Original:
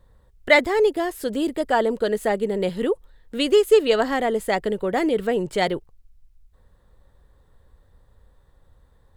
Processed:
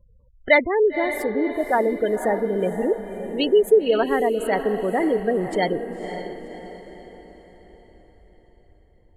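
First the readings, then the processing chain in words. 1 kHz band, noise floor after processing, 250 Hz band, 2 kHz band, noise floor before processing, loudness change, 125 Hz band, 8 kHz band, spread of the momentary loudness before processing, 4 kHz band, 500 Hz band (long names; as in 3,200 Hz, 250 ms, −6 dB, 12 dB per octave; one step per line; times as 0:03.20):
0.0 dB, −55 dBFS, +0.5 dB, 0.0 dB, −58 dBFS, 0.0 dB, +0.5 dB, can't be measured, 9 LU, −4.0 dB, +0.5 dB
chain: gate on every frequency bin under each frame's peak −20 dB strong
feedback delay with all-pass diffusion 538 ms, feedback 46%, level −9 dB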